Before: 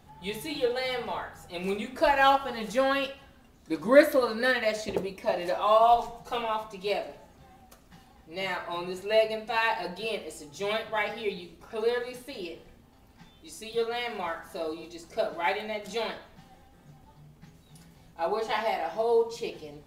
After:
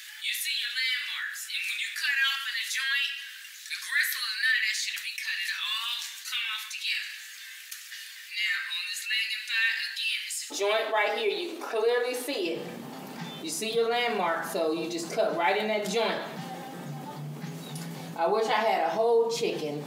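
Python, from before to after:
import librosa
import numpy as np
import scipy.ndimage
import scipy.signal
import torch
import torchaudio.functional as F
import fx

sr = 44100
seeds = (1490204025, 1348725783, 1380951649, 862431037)

y = fx.ellip_highpass(x, sr, hz=fx.steps((0.0, 1700.0), (10.5, 280.0), (12.45, 150.0)), order=4, stop_db=60)
y = fx.env_flatten(y, sr, amount_pct=50)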